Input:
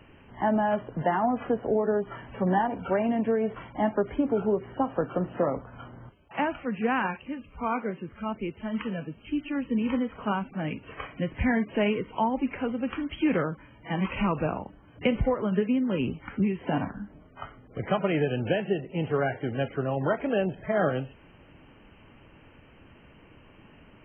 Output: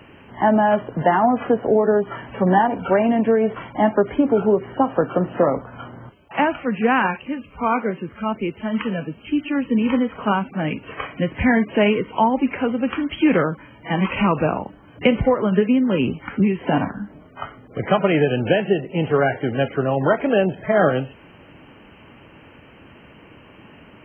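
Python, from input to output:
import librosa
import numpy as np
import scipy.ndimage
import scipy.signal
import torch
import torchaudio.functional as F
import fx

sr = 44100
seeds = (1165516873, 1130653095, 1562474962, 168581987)

y = fx.highpass(x, sr, hz=120.0, slope=6)
y = y * librosa.db_to_amplitude(9.0)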